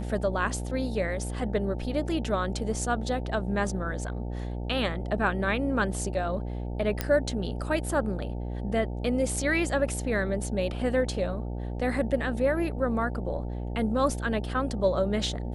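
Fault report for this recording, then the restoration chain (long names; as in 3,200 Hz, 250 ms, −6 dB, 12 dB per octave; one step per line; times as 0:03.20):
mains buzz 60 Hz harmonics 15 −33 dBFS
0:07.01: click −11 dBFS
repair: click removal
hum removal 60 Hz, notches 15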